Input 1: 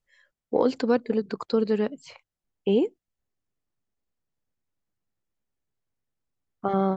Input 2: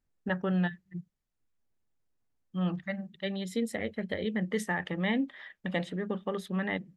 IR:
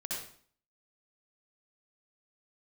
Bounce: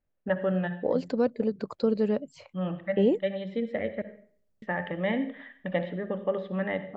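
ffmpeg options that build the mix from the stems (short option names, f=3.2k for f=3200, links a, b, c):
-filter_complex "[0:a]lowshelf=f=220:g=11,dynaudnorm=f=130:g=11:m=12.5dB,adelay=300,volume=-13.5dB[a];[1:a]lowpass=f=3.1k:w=0.5412,lowpass=f=3.1k:w=1.3066,volume=-2dB,asplit=3[b][c][d];[b]atrim=end=4.02,asetpts=PTS-STARTPTS,afade=t=out:st=4.016:d=0.004:c=hsin[e];[c]atrim=start=4.02:end=4.62,asetpts=PTS-STARTPTS,volume=0[f];[d]atrim=start=4.62,asetpts=PTS-STARTPTS,afade=t=in:d=0.004:c=hsin[g];[e][f][g]concat=n=3:v=0:a=1,asplit=2[h][i];[i]volume=-11dB[j];[2:a]atrim=start_sample=2205[k];[j][k]afir=irnorm=-1:irlink=0[l];[a][h][l]amix=inputs=3:normalize=0,equalizer=f=580:t=o:w=0.37:g=10.5"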